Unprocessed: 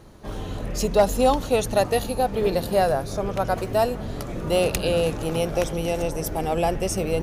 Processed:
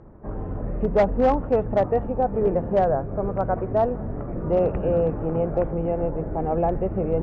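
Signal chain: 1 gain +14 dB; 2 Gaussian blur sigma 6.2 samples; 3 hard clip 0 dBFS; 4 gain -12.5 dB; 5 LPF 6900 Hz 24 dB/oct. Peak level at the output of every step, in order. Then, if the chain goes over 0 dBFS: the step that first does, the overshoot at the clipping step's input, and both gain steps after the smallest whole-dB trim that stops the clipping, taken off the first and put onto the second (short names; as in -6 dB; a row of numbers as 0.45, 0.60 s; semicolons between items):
+5.0, +4.5, 0.0, -12.5, -12.5 dBFS; step 1, 4.5 dB; step 1 +9 dB, step 4 -7.5 dB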